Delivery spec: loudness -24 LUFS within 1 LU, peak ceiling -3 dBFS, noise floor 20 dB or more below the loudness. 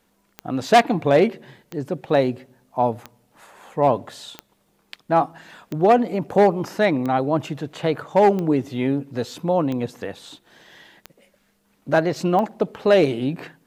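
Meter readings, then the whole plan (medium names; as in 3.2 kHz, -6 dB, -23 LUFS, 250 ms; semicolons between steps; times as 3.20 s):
clicks found 10; loudness -21.0 LUFS; peak level -3.0 dBFS; loudness target -24.0 LUFS
-> de-click; trim -3 dB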